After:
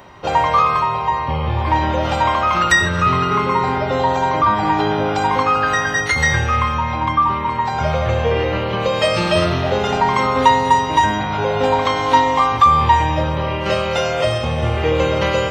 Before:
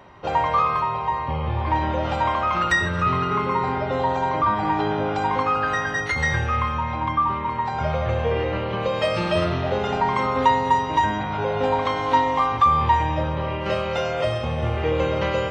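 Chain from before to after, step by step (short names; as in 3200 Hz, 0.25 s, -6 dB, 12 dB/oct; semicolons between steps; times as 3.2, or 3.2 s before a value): high shelf 5200 Hz +12 dB; gain +5 dB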